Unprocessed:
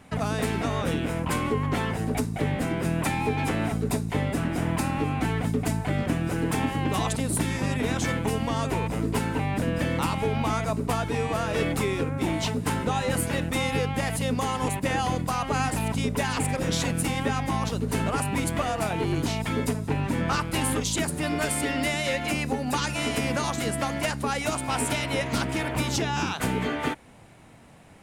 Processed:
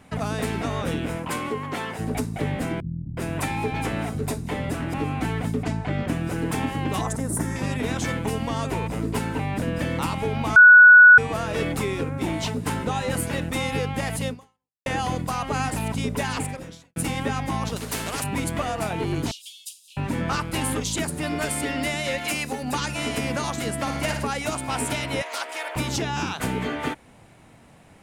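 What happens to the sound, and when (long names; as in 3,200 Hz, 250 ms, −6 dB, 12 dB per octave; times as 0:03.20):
0:01.16–0:01.98: high-pass filter 200 Hz → 440 Hz 6 dB per octave
0:02.80–0:04.94: multiband delay without the direct sound lows, highs 370 ms, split 190 Hz
0:05.63–0:06.08: low-pass filter 5,100 Hz
0:07.01–0:07.56: flat-topped bell 3,300 Hz −13 dB 1.2 octaves
0:10.56–0:11.18: beep over 1,470 Hz −6 dBFS
0:14.28–0:14.86: fade out exponential
0:16.36–0:16.96: fade out quadratic
0:17.76–0:18.24: every bin compressed towards the loudest bin 2 to 1
0:19.31–0:19.97: Butterworth high-pass 2,900 Hz 72 dB per octave
0:22.18–0:22.63: spectral tilt +2 dB per octave
0:23.78–0:24.27: flutter between parallel walls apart 9.7 metres, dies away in 0.62 s
0:25.22–0:25.76: high-pass filter 540 Hz 24 dB per octave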